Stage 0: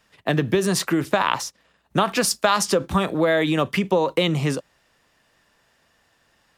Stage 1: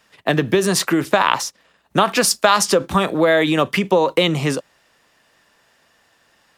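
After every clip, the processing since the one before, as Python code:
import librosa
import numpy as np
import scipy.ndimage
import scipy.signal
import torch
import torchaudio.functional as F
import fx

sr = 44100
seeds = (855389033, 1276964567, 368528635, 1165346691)

y = fx.low_shelf(x, sr, hz=140.0, db=-9.0)
y = F.gain(torch.from_numpy(y), 5.0).numpy()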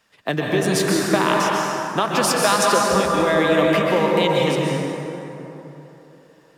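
y = fx.rev_plate(x, sr, seeds[0], rt60_s=3.3, hf_ratio=0.5, predelay_ms=115, drr_db=-2.5)
y = F.gain(torch.from_numpy(y), -5.5).numpy()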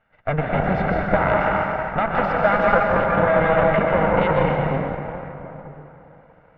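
y = fx.lower_of_two(x, sr, delay_ms=1.4)
y = scipy.signal.sosfilt(scipy.signal.butter(4, 2000.0, 'lowpass', fs=sr, output='sos'), y)
y = F.gain(torch.from_numpy(y), 2.5).numpy()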